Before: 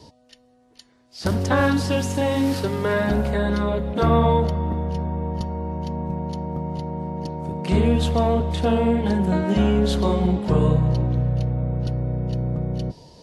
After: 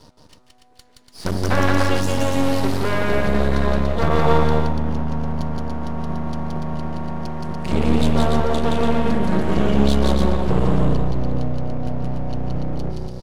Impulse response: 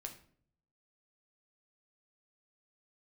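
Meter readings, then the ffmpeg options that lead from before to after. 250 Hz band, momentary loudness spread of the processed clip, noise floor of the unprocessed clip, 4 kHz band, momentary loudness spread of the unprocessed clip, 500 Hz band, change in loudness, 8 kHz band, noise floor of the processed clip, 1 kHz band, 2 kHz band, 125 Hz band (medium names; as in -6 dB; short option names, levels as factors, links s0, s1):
+1.0 dB, 10 LU, -58 dBFS, +2.5 dB, 10 LU, +0.5 dB, +0.5 dB, +2.5 dB, -52 dBFS, +2.0 dB, +3.0 dB, -0.5 dB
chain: -filter_complex "[0:a]aeval=exprs='max(val(0),0)':c=same,asplit=2[s0][s1];[s1]aecho=0:1:172|288.6:0.794|0.562[s2];[s0][s2]amix=inputs=2:normalize=0,volume=1.33"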